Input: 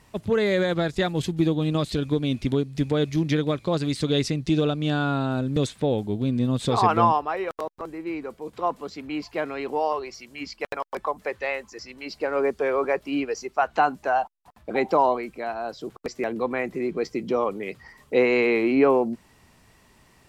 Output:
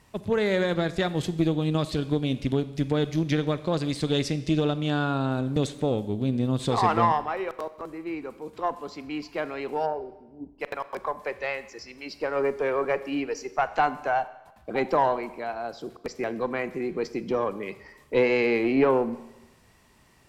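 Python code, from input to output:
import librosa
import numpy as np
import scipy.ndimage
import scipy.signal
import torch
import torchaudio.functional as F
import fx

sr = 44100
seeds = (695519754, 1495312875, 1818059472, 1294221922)

y = fx.brickwall_lowpass(x, sr, high_hz=1000.0, at=(9.85, 10.58), fade=0.02)
y = fx.cheby_harmonics(y, sr, harmonics=(4,), levels_db=(-22,), full_scale_db=-6.0)
y = fx.rev_schroeder(y, sr, rt60_s=1.0, comb_ms=30, drr_db=14.0)
y = y * 10.0 ** (-2.5 / 20.0)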